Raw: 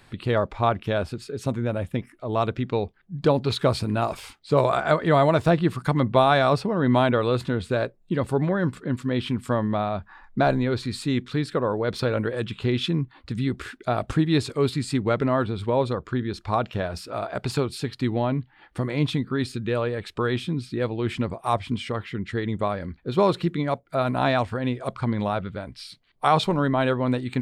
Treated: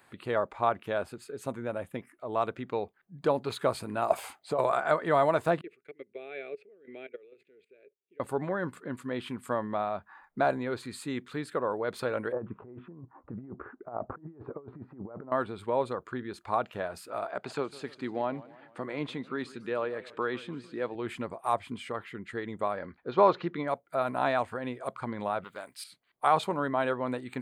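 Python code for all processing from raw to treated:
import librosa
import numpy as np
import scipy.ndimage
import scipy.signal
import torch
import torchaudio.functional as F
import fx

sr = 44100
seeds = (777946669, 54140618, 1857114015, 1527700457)

y = fx.chain(x, sr, fx.peak_eq(hz=690.0, db=12.5, octaves=0.5),
    fx.over_compress(threshold_db=-20.0, ratio=-1.0), at=(4.1, 4.59))
y = fx.chain(y, sr, fx.level_steps(step_db=20),
    fx.double_bandpass(hz=990.0, octaves=2.5), at=(5.61, 8.2))
y = fx.chain(y, sr, fx.lowpass(hz=1100.0, slope=24),
    fx.over_compress(threshold_db=-29.0, ratio=-0.5), at=(12.32, 15.32))
y = fx.chain(y, sr, fx.bandpass_edges(low_hz=150.0, high_hz=5600.0),
    fx.echo_warbled(ms=150, feedback_pct=53, rate_hz=2.8, cents=149, wet_db=-19), at=(17.31, 20.95))
y = fx.chain(y, sr, fx.steep_lowpass(hz=6000.0, slope=48),
    fx.peak_eq(hz=910.0, db=5.5, octaves=2.4), at=(22.77, 23.68))
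y = fx.chain(y, sr, fx.riaa(side='recording'),
    fx.doppler_dist(depth_ms=0.19), at=(25.44, 25.84))
y = fx.highpass(y, sr, hz=790.0, slope=6)
y = fx.peak_eq(y, sr, hz=4000.0, db=-11.0, octaves=1.9)
y = fx.notch(y, sr, hz=5500.0, q=8.7)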